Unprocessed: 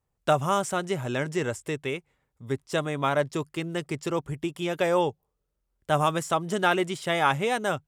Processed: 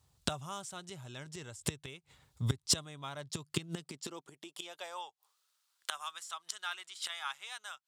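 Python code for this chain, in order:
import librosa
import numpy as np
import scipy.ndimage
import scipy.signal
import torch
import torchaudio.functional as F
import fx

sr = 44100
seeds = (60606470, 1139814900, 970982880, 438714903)

y = fx.gate_flip(x, sr, shuts_db=-26.0, range_db=-25)
y = fx.graphic_eq(y, sr, hz=(250, 500, 2000, 4000, 8000), db=(-5, -7, -5, 9, 4))
y = fx.filter_sweep_highpass(y, sr, from_hz=75.0, to_hz=1300.0, start_s=3.12, end_s=5.33, q=1.4)
y = F.gain(torch.from_numpy(y), 9.5).numpy()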